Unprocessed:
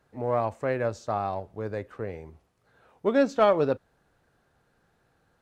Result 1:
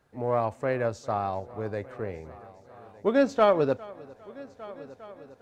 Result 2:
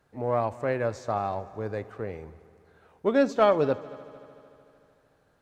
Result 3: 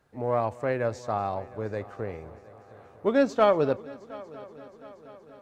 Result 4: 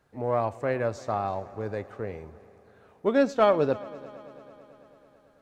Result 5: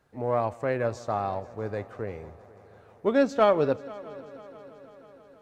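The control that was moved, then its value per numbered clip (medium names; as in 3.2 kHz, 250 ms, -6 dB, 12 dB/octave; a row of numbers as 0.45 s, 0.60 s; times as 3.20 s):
multi-head delay, time: 403 ms, 75 ms, 238 ms, 110 ms, 162 ms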